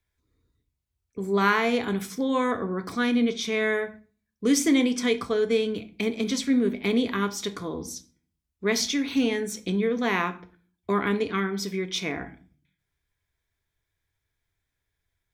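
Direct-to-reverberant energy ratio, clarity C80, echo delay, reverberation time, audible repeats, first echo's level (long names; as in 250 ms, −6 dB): 9.0 dB, 22.0 dB, no echo audible, 0.45 s, no echo audible, no echo audible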